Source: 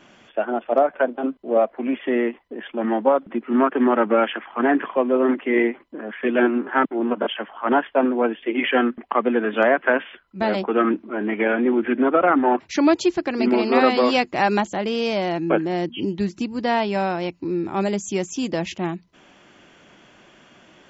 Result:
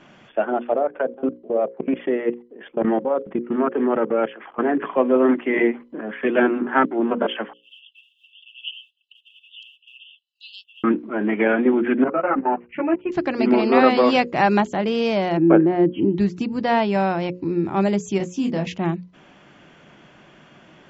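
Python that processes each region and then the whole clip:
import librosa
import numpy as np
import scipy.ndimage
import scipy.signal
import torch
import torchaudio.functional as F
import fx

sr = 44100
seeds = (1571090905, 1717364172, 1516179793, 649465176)

y = fx.chain(x, sr, fx.peak_eq(hz=450.0, db=8.5, octaves=0.72),
    fx.level_steps(step_db=21), at=(0.72, 4.82))
y = fx.chain(y, sr, fx.quant_float(bits=8),
    fx.brickwall_highpass(low_hz=2600.0),
    fx.high_shelf(hz=4700.0, db=-4.0), at=(7.53, 10.84))
y = fx.chain(y, sr, fx.steep_lowpass(hz=2900.0, slope=96),
    fx.level_steps(step_db=18),
    fx.ensemble(), at=(12.04, 13.12))
y = fx.chain(y, sr, fx.lowpass(hz=1900.0, slope=12),
    fx.peak_eq(hz=340.0, db=8.0, octaves=0.38), at=(15.37, 16.15))
y = fx.chain(y, sr, fx.peak_eq(hz=230.0, db=8.5, octaves=0.5),
    fx.detune_double(cents=45), at=(18.18, 18.67))
y = fx.lowpass(y, sr, hz=3200.0, slope=6)
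y = fx.peak_eq(y, sr, hz=150.0, db=6.5, octaves=0.64)
y = fx.hum_notches(y, sr, base_hz=60, count=9)
y = y * 10.0 ** (2.0 / 20.0)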